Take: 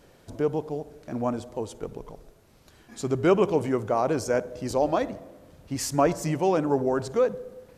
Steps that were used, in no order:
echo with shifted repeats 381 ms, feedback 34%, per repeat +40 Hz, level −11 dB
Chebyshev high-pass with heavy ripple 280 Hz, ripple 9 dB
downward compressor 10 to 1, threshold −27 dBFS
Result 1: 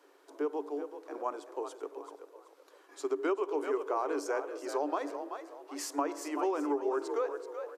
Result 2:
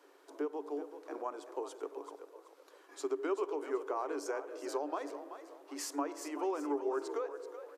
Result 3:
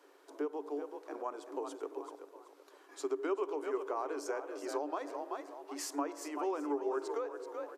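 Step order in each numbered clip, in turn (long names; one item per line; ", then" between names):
Chebyshev high-pass with heavy ripple, then echo with shifted repeats, then downward compressor
downward compressor, then Chebyshev high-pass with heavy ripple, then echo with shifted repeats
echo with shifted repeats, then downward compressor, then Chebyshev high-pass with heavy ripple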